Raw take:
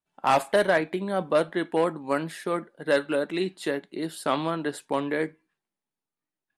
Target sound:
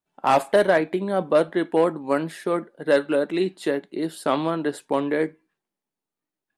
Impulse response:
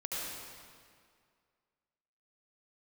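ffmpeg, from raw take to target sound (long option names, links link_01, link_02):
-af "equalizer=frequency=390:width_type=o:width=2.4:gain=5"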